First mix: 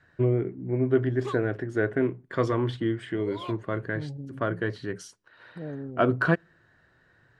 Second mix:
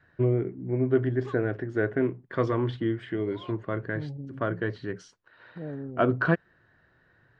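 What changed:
first voice: send off; background -6.5 dB; master: add distance through air 130 m

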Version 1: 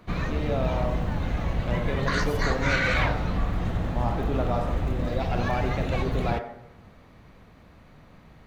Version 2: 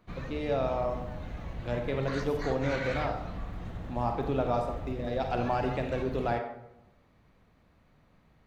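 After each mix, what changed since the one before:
background -12.0 dB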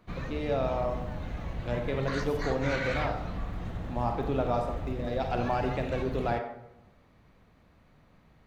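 background +3.0 dB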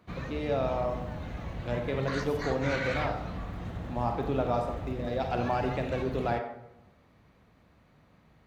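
master: add high-pass 52 Hz

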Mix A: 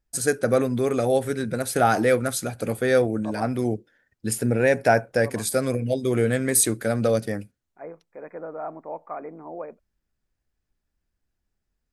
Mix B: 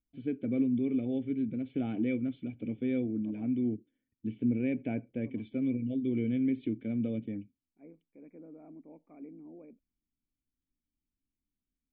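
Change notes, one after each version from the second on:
master: add cascade formant filter i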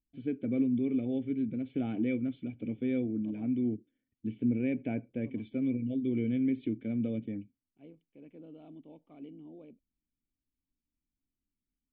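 second voice: remove brick-wall FIR band-pass 150–2500 Hz

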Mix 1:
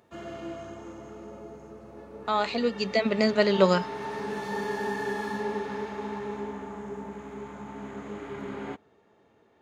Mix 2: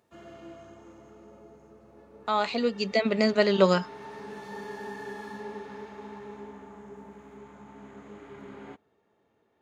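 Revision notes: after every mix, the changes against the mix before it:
background -8.0 dB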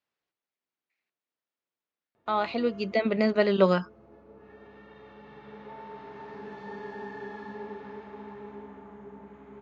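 background: entry +2.15 s; master: add distance through air 210 m

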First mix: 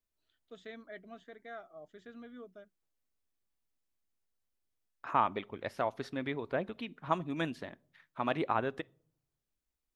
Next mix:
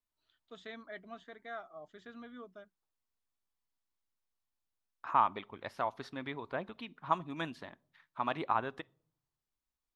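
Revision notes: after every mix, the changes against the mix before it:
second voice -5.0 dB; master: add ten-band graphic EQ 500 Hz -3 dB, 1 kHz +8 dB, 4 kHz +4 dB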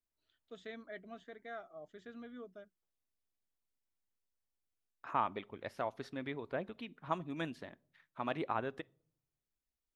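master: add ten-band graphic EQ 500 Hz +3 dB, 1 kHz -8 dB, 4 kHz -4 dB

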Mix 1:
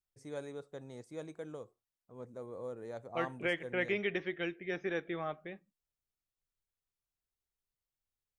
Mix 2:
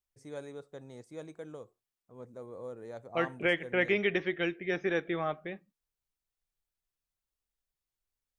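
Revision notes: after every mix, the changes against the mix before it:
second voice +5.5 dB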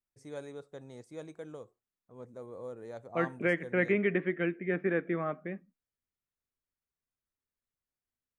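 second voice: add cabinet simulation 140–2200 Hz, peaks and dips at 180 Hz +6 dB, 250 Hz +9 dB, 820 Hz -7 dB

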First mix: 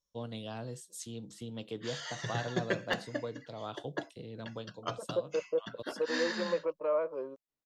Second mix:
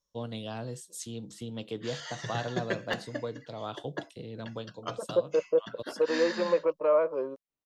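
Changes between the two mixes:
first voice +3.5 dB; second voice +6.5 dB

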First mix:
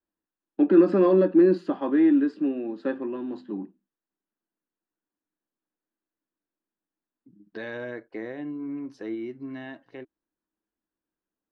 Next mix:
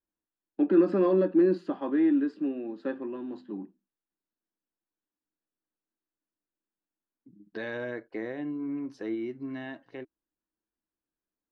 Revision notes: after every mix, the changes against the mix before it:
first voice -4.5 dB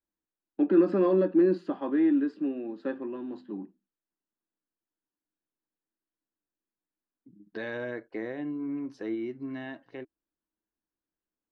master: add treble shelf 7.6 kHz -3.5 dB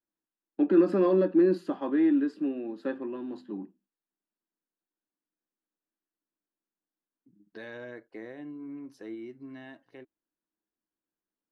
second voice -7.5 dB; master: remove distance through air 100 m

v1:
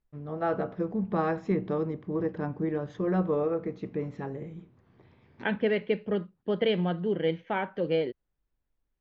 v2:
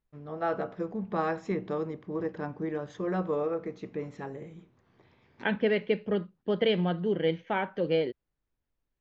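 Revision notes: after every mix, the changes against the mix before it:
first voice: add bass shelf 330 Hz -7 dB; master: remove distance through air 87 m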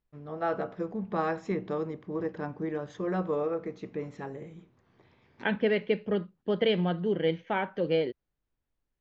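no change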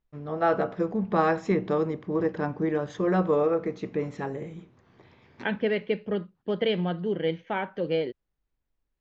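first voice +6.5 dB

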